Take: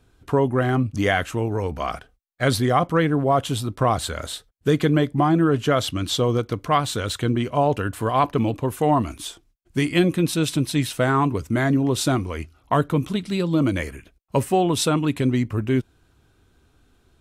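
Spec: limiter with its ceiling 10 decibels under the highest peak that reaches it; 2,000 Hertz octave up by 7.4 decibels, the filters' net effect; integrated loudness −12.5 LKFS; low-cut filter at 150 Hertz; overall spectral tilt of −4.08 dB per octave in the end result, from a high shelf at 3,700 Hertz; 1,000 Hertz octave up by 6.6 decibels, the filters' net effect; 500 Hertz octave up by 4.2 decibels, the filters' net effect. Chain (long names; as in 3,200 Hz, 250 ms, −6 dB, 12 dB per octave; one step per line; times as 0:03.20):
high-pass filter 150 Hz
parametric band 500 Hz +3.5 dB
parametric band 1,000 Hz +5.5 dB
parametric band 2,000 Hz +5.5 dB
high-shelf EQ 3,700 Hz +7.5 dB
level +9.5 dB
brickwall limiter 0 dBFS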